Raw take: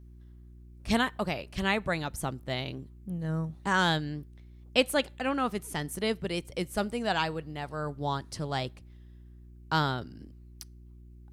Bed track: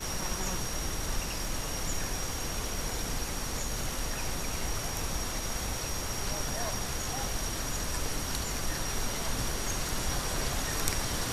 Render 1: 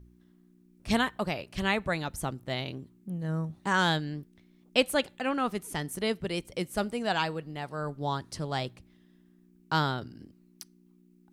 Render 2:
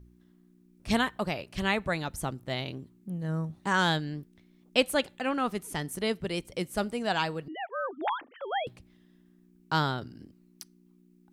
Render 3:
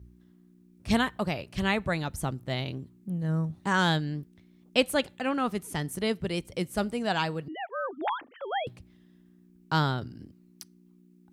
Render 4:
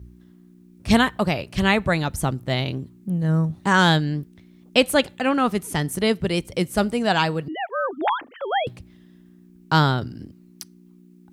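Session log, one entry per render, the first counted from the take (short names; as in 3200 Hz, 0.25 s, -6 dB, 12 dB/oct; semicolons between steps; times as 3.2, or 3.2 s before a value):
de-hum 60 Hz, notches 2
7.48–8.67 sine-wave speech
HPF 66 Hz; low shelf 120 Hz +10.5 dB
gain +8 dB; limiter -2 dBFS, peak gain reduction 2.5 dB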